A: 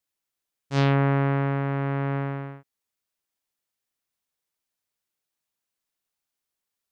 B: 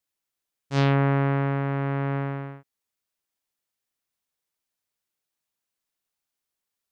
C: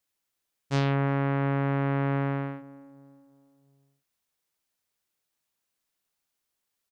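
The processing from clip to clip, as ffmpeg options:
-af anull
-filter_complex "[0:a]acompressor=threshold=0.0501:ratio=6,asplit=2[s0][s1];[s1]adelay=350,lowpass=f=1000:p=1,volume=0.133,asplit=2[s2][s3];[s3]adelay=350,lowpass=f=1000:p=1,volume=0.51,asplit=2[s4][s5];[s5]adelay=350,lowpass=f=1000:p=1,volume=0.51,asplit=2[s6][s7];[s7]adelay=350,lowpass=f=1000:p=1,volume=0.51[s8];[s0][s2][s4][s6][s8]amix=inputs=5:normalize=0,volume=1.41"

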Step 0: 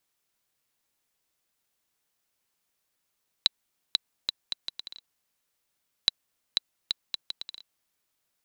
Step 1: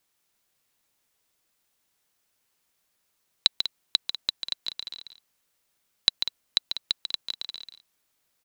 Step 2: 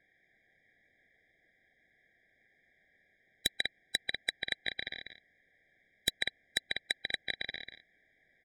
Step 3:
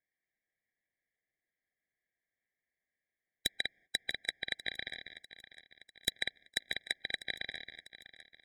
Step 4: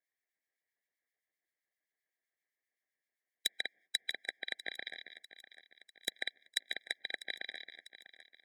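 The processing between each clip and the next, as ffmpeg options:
-af "aecho=1:1:142.9|195.3:0.398|0.251,volume=1.5"
-af "lowpass=f=1900:t=q:w=3.4,aeval=exprs='0.596*sin(PI/2*3.55*val(0)/0.596)':c=same,afftfilt=real='re*eq(mod(floor(b*sr/1024/790),2),0)':imag='im*eq(mod(floor(b*sr/1024/790),2),0)':win_size=1024:overlap=0.75,volume=0.473"
-af "agate=range=0.1:threshold=0.00126:ratio=16:detection=peak,aecho=1:1:647|1294|1941|2588|3235:0.158|0.0808|0.0412|0.021|0.0107,volume=0.794"
-filter_complex "[0:a]highpass=310,acrossover=split=1900[s0][s1];[s0]aeval=exprs='val(0)*(1-0.7/2+0.7/2*cos(2*PI*7.7*n/s))':c=same[s2];[s1]aeval=exprs='val(0)*(1-0.7/2-0.7/2*cos(2*PI*7.7*n/s))':c=same[s3];[s2][s3]amix=inputs=2:normalize=0,volume=1.19"

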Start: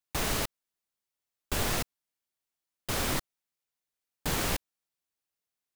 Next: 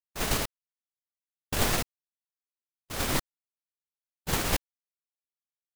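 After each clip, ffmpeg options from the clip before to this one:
-af "agate=range=0.00158:threshold=0.0398:ratio=16:detection=peak,volume=2.11"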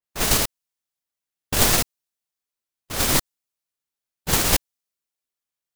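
-af "adynamicequalizer=threshold=0.00708:dfrequency=3600:dqfactor=0.7:tfrequency=3600:tqfactor=0.7:attack=5:release=100:ratio=0.375:range=3:mode=boostabove:tftype=highshelf,volume=2"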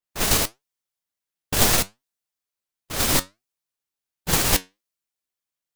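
-af "flanger=delay=5.7:depth=5.2:regen=73:speed=1.4:shape=sinusoidal,volume=1.58"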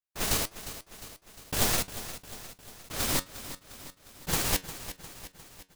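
-af "aecho=1:1:354|708|1062|1416|1770|2124:0.224|0.128|0.0727|0.0415|0.0236|0.0135,volume=0.398"

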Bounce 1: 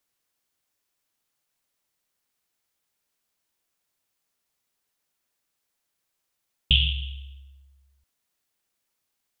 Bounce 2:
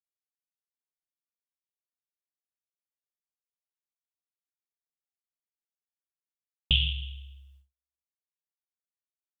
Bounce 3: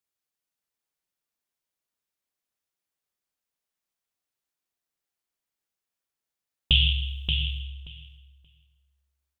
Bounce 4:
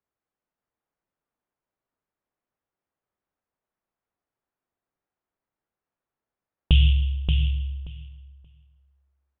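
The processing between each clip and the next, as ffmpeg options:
-af "agate=range=0.0112:threshold=0.00224:ratio=16:detection=peak,volume=0.631"
-filter_complex "[0:a]asplit=2[s0][s1];[s1]alimiter=limit=0.1:level=0:latency=1:release=15,volume=1.26[s2];[s0][s2]amix=inputs=2:normalize=0,asplit=2[s3][s4];[s4]adelay=579,lowpass=f=3100:p=1,volume=0.631,asplit=2[s5][s6];[s6]adelay=579,lowpass=f=3100:p=1,volume=0.16,asplit=2[s7][s8];[s8]adelay=579,lowpass=f=3100:p=1,volume=0.16[s9];[s3][s5][s7][s9]amix=inputs=4:normalize=0"
-af "lowpass=1300,volume=2.37"

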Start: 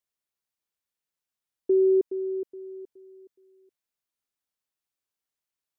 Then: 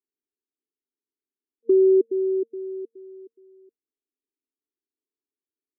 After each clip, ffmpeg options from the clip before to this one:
-filter_complex "[0:a]afftfilt=real='re*between(b*sr/4096,230,460)':imag='im*between(b*sr/4096,230,460)':win_size=4096:overlap=0.75,asplit=2[s0][s1];[s1]acompressor=threshold=0.0355:ratio=6,volume=1[s2];[s0][s2]amix=inputs=2:normalize=0,volume=1.19"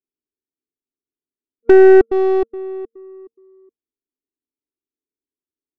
-af "adynamicsmooth=sensitivity=5.5:basefreq=500,aeval=exprs='0.282*(cos(1*acos(clip(val(0)/0.282,-1,1)))-cos(1*PI/2))+0.0398*(cos(4*acos(clip(val(0)/0.282,-1,1)))-cos(4*PI/2))+0.0141*(cos(7*acos(clip(val(0)/0.282,-1,1)))-cos(7*PI/2))':c=same,volume=2.82"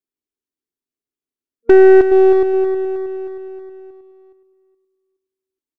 -af "aecho=1:1:316|632|948|1264|1580|1896:0.355|0.185|0.0959|0.0499|0.0259|0.0135"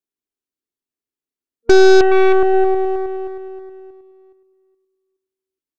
-af "aeval=exprs='0.841*(cos(1*acos(clip(val(0)/0.841,-1,1)))-cos(1*PI/2))+0.133*(cos(8*acos(clip(val(0)/0.841,-1,1)))-cos(8*PI/2))':c=same,volume=0.841"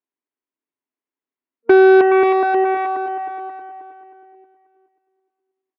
-af "highpass=190,equalizer=f=270:t=q:w=4:g=4,equalizer=f=600:t=q:w=4:g=4,equalizer=f=980:t=q:w=4:g=8,equalizer=f=2000:t=q:w=4:g=3,lowpass=f=2800:w=0.5412,lowpass=f=2800:w=1.3066,aecho=1:1:536|1072|1608:0.447|0.0893|0.0179,volume=0.891"

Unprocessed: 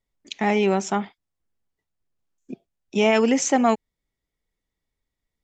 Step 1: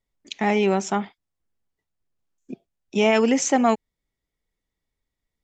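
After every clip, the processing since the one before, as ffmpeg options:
-af anull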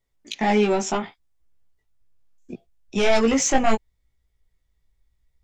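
-af "aeval=exprs='0.501*sin(PI/2*2*val(0)/0.501)':c=same,asubboost=boost=6.5:cutoff=93,flanger=delay=15.5:depth=3.4:speed=0.7,volume=0.668"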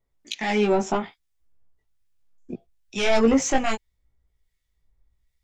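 -filter_complex "[0:a]acrossover=split=1500[s0][s1];[s0]aeval=exprs='val(0)*(1-0.7/2+0.7/2*cos(2*PI*1.2*n/s))':c=same[s2];[s1]aeval=exprs='val(0)*(1-0.7/2-0.7/2*cos(2*PI*1.2*n/s))':c=same[s3];[s2][s3]amix=inputs=2:normalize=0,volume=1.26"

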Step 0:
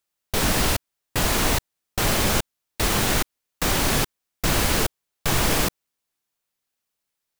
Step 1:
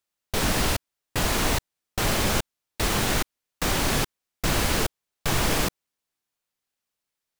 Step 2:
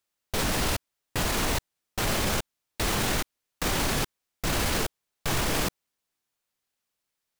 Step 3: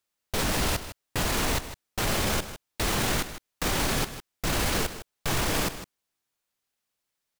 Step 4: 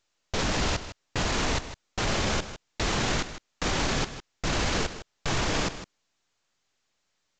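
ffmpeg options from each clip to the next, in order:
-af "highshelf=f=10000:g=-4,volume=0.794"
-af "alimiter=limit=0.112:level=0:latency=1:release=11,volume=1.19"
-af "aecho=1:1:156:0.237"
-ar 16000 -c:a pcm_mulaw

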